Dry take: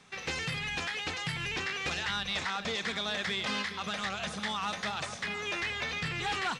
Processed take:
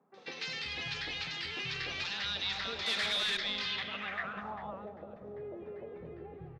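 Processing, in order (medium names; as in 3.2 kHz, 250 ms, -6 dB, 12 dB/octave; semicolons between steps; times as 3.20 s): fade out at the end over 0.55 s; reverberation RT60 1.6 s, pre-delay 170 ms, DRR 8.5 dB; low-pass sweep 4.5 kHz -> 490 Hz, 3.49–4.85 s; 2.72–3.23 s: overdrive pedal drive 18 dB, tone 5.5 kHz, clips at -18.5 dBFS; low-pass 8 kHz 12 dB/octave; three bands offset in time mids, highs, lows 140/380 ms, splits 180/1000 Hz; trim -6 dB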